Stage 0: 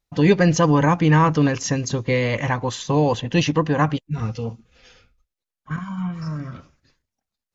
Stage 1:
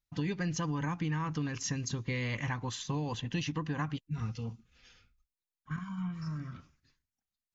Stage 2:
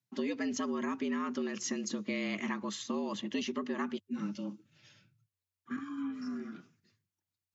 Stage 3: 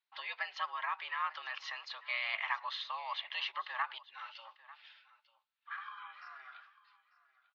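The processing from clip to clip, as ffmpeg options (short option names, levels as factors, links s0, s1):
-af "equalizer=f=560:t=o:w=1.1:g=-11,acompressor=threshold=0.0891:ratio=10,volume=0.376"
-af "afreqshift=92,volume=0.891"
-af "asuperpass=centerf=1800:order=12:qfactor=0.51,aecho=1:1:895:0.106,volume=1.68"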